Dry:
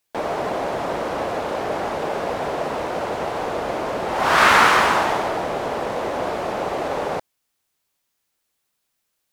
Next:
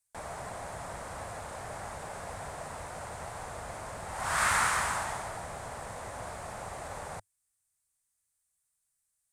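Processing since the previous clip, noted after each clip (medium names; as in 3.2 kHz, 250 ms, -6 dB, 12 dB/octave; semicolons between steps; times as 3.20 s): FFT filter 100 Hz 0 dB, 330 Hz -21 dB, 470 Hz -18 dB, 690 Hz -12 dB, 1.9 kHz -8 dB, 2.9 kHz -14 dB, 5.7 kHz -6 dB, 8.7 kHz +8 dB, 16 kHz -12 dB; trim -4 dB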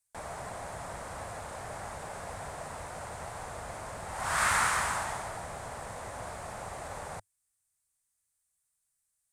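no audible change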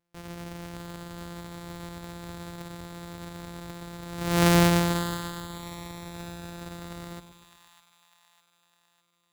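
sorted samples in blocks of 256 samples; two-band feedback delay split 890 Hz, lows 121 ms, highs 604 ms, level -8.5 dB; upward expansion 1.5:1, over -42 dBFS; trim +7 dB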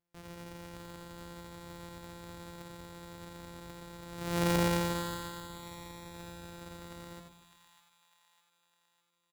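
delay 85 ms -6 dB; transformer saturation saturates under 400 Hz; trim -7 dB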